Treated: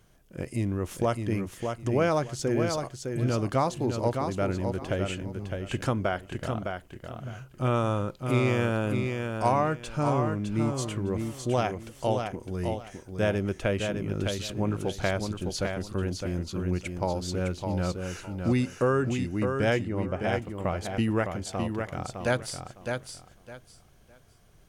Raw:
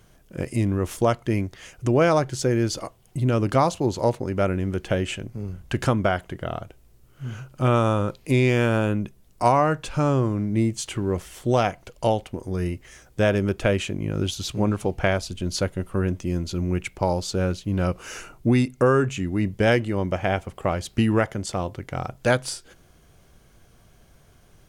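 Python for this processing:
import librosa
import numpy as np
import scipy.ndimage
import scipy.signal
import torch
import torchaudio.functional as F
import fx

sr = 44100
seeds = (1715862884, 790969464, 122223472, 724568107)

y = fx.lowpass(x, sr, hz=1900.0, slope=6, at=(19.83, 20.42))
y = fx.echo_feedback(y, sr, ms=609, feedback_pct=22, wet_db=-5.5)
y = F.gain(torch.from_numpy(y), -6.0).numpy()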